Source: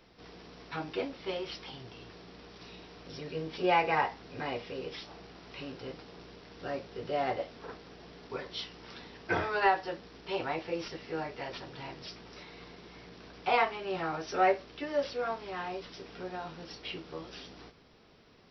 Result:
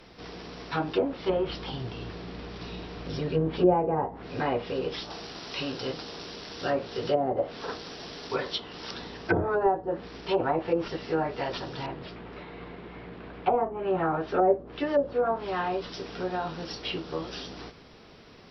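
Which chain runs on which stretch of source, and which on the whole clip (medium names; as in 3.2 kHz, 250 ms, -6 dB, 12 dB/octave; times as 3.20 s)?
1.29–3.74 s: low-pass 4.8 kHz + bass shelf 190 Hz +7.5 dB
5.10–8.91 s: treble shelf 2.7 kHz +10 dB + hum notches 60/120/180/240/300/360/420/480 Hz
11.86–14.50 s: level-controlled noise filter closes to 2.8 kHz, open at -23.5 dBFS + distance through air 250 m
whole clip: low-pass that closes with the level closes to 500 Hz, closed at -27 dBFS; dynamic bell 2.2 kHz, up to -6 dB, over -59 dBFS, Q 2.5; trim +9 dB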